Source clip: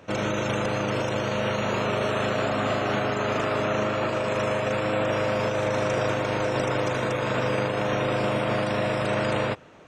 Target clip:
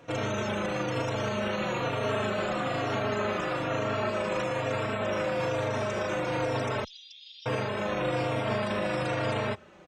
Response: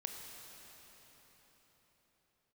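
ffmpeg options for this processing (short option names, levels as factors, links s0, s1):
-filter_complex "[0:a]alimiter=limit=0.126:level=0:latency=1:release=16,asettb=1/sr,asplit=3[s0][s1][s2];[s0]atrim=end=6.844[s3];[s1]atrim=start=6.84:end=7.46,asetpts=PTS-STARTPTS,afade=t=in:d=0.004:c=qsin,afade=t=out:st=0.616:d=0.004:c=qsin,asuperpass=centerf=4200:order=8:qfactor=1.8[s4];[s2]atrim=start=7.456[s5];[s3][s4]acrossfade=d=0.004:c1=hsin:c2=qsin[s6];[s6][s5]acrossfade=d=0.004:c1=qsin:c2=hsin,asplit=2[s7][s8];[s8]adelay=3.7,afreqshift=-1.1[s9];[s7][s9]amix=inputs=2:normalize=1"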